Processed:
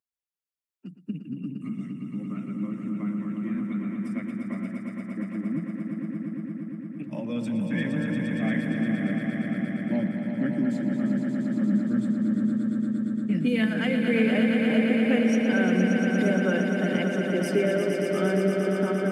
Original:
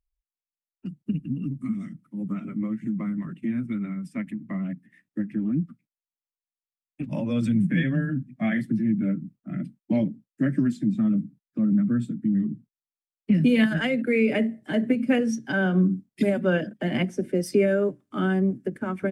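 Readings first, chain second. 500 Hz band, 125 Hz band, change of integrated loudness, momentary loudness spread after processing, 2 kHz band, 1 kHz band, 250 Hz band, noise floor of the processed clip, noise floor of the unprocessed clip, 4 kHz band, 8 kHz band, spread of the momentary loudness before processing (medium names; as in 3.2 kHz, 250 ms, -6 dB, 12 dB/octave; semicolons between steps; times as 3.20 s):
+0.5 dB, -2.5 dB, -0.5 dB, 12 LU, +1.0 dB, +0.5 dB, 0.0 dB, -51 dBFS, under -85 dBFS, +1.0 dB, no reading, 11 LU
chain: high-pass 190 Hz 12 dB/octave; echo with a slow build-up 116 ms, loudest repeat 5, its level -7 dB; trim -3.5 dB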